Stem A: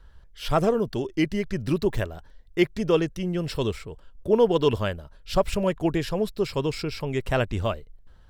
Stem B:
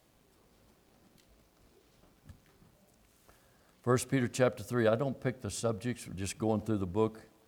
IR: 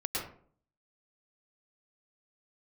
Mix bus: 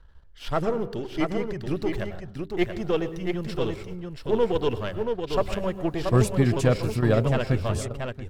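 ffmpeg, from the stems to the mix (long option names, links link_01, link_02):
-filter_complex "[0:a]aeval=exprs='if(lt(val(0),0),0.447*val(0),val(0))':channel_layout=same,highshelf=frequency=5900:gain=-8,volume=-2dB,asplit=4[link_01][link_02][link_03][link_04];[link_02]volume=-16dB[link_05];[link_03]volume=-4dB[link_06];[1:a]equalizer=frequency=74:width_type=o:width=2.4:gain=14,adelay=2250,volume=3dB,asplit=2[link_07][link_08];[link_08]volume=-16dB[link_09];[link_04]apad=whole_len=428841[link_10];[link_07][link_10]sidechaingate=range=-33dB:threshold=-41dB:ratio=16:detection=peak[link_11];[2:a]atrim=start_sample=2205[link_12];[link_05][link_12]afir=irnorm=-1:irlink=0[link_13];[link_06][link_09]amix=inputs=2:normalize=0,aecho=0:1:680:1[link_14];[link_01][link_11][link_13][link_14]amix=inputs=4:normalize=0,bandreject=frequency=98.51:width_type=h:width=4,bandreject=frequency=197.02:width_type=h:width=4,bandreject=frequency=295.53:width_type=h:width=4,bandreject=frequency=394.04:width_type=h:width=4"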